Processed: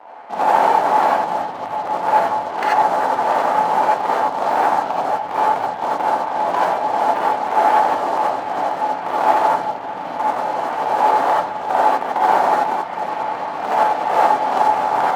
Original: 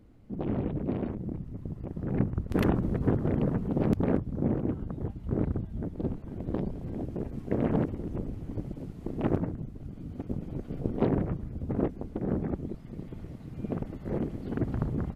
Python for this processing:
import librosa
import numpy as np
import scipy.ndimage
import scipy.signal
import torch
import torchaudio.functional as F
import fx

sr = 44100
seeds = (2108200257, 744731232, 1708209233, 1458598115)

y = scipy.signal.sosfilt(scipy.signal.cheby1(2, 1.0, 2100.0, 'lowpass', fs=sr, output='sos'), x)
y = fx.over_compress(y, sr, threshold_db=-30.0, ratio=-0.5)
y = fx.leveller(y, sr, passes=5)
y = fx.highpass_res(y, sr, hz=830.0, q=4.6)
y = fx.rev_gated(y, sr, seeds[0], gate_ms=110, shape='rising', drr_db=-6.0)
y = y * librosa.db_to_amplitude(1.0)